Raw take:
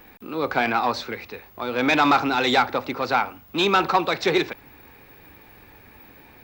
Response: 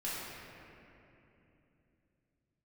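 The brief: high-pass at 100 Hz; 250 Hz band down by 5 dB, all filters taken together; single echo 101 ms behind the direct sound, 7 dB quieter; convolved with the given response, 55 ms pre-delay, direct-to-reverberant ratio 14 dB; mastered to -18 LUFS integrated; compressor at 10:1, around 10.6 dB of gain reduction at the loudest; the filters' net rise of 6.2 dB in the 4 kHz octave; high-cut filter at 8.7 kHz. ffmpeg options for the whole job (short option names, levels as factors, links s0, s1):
-filter_complex "[0:a]highpass=100,lowpass=8700,equalizer=f=250:t=o:g=-6.5,equalizer=f=4000:t=o:g=7,acompressor=threshold=0.0631:ratio=10,aecho=1:1:101:0.447,asplit=2[s0][s1];[1:a]atrim=start_sample=2205,adelay=55[s2];[s1][s2]afir=irnorm=-1:irlink=0,volume=0.126[s3];[s0][s3]amix=inputs=2:normalize=0,volume=3.16"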